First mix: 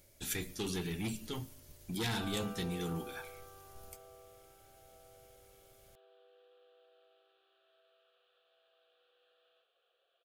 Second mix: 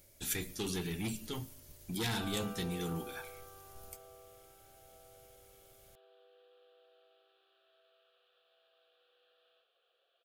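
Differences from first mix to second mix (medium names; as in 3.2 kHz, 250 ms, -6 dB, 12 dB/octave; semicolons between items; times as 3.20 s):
speech: add treble shelf 8.1 kHz +4 dB; background: remove distance through air 81 m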